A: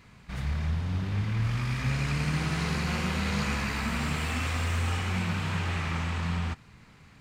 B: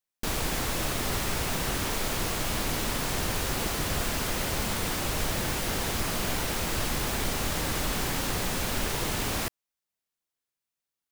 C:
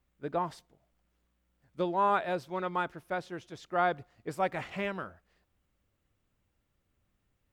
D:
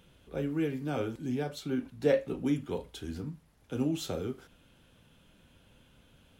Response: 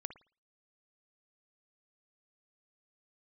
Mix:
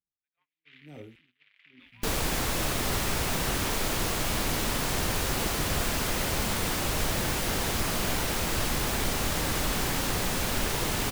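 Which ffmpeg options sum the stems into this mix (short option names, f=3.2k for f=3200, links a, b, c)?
-filter_complex "[0:a]asoftclip=type=tanh:threshold=-34dB,adelay=350,volume=-2.5dB[a];[1:a]adelay=1800,volume=1dB[b];[2:a]volume=-7dB[c];[3:a]equalizer=f=1.6k:t=o:w=2.7:g=-13.5,aeval=exprs='val(0)*pow(10,-35*(0.5-0.5*cos(2*PI*1*n/s))/20)':c=same,volume=-8dB[d];[a][c]amix=inputs=2:normalize=0,asuperpass=centerf=2600:order=4:qfactor=1.8,alimiter=level_in=19dB:limit=-24dB:level=0:latency=1:release=404,volume=-19dB,volume=0dB[e];[b][d][e]amix=inputs=3:normalize=0,agate=range=-32dB:threshold=-56dB:ratio=16:detection=peak"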